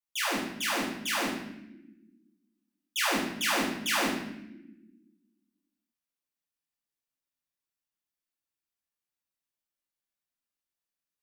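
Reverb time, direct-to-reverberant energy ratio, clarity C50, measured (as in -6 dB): not exponential, -7.0 dB, 2.5 dB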